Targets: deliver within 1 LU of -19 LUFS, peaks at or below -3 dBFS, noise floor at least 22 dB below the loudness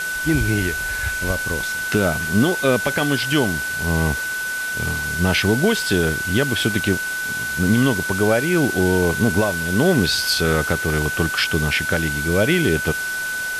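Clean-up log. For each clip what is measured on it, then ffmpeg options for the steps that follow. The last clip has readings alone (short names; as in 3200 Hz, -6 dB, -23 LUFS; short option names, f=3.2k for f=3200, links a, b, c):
steady tone 1500 Hz; tone level -23 dBFS; noise floor -25 dBFS; noise floor target -42 dBFS; loudness -19.5 LUFS; peak -5.5 dBFS; loudness target -19.0 LUFS
-> -af "bandreject=f=1.5k:w=30"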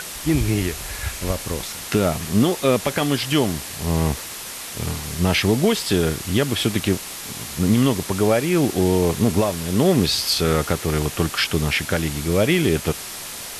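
steady tone none; noise floor -33 dBFS; noise floor target -43 dBFS
-> -af "afftdn=nr=10:nf=-33"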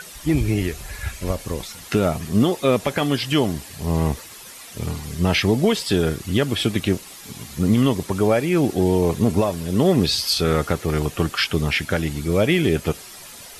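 noise floor -40 dBFS; noise floor target -43 dBFS
-> -af "afftdn=nr=6:nf=-40"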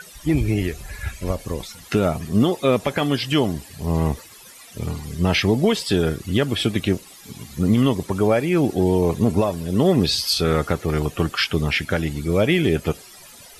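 noise floor -44 dBFS; loudness -21.0 LUFS; peak -7.5 dBFS; loudness target -19.0 LUFS
-> -af "volume=2dB"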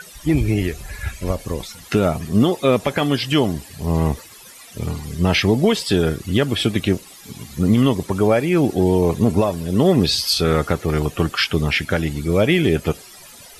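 loudness -19.0 LUFS; peak -5.5 dBFS; noise floor -42 dBFS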